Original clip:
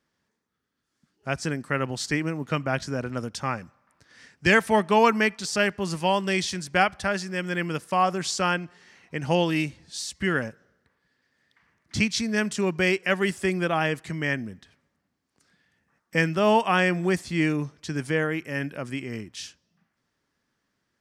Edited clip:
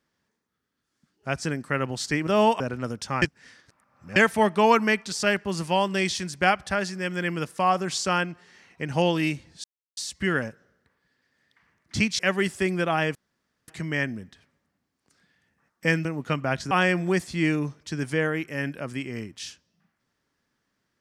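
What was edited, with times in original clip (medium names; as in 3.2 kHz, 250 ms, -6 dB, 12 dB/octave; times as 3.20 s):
2.27–2.93 s: swap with 16.35–16.68 s
3.55–4.49 s: reverse
9.97 s: insert silence 0.33 s
12.19–13.02 s: delete
13.98 s: insert room tone 0.53 s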